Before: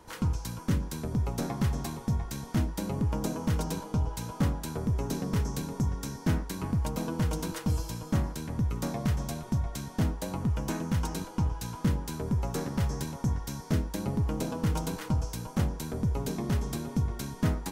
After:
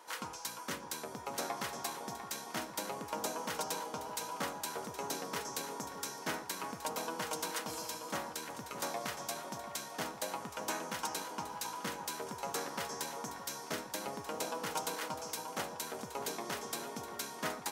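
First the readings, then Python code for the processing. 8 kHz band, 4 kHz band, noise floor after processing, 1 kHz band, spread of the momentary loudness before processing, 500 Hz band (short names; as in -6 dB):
+1.5 dB, +1.5 dB, -48 dBFS, +1.0 dB, 2 LU, -3.5 dB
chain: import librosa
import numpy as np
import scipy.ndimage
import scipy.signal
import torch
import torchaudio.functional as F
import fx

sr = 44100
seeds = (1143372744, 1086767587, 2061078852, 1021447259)

y = scipy.signal.sosfilt(scipy.signal.butter(2, 630.0, 'highpass', fs=sr, output='sos'), x)
y = fx.echo_alternate(y, sr, ms=618, hz=1000.0, feedback_pct=57, wet_db=-8.5)
y = y * librosa.db_to_amplitude(1.5)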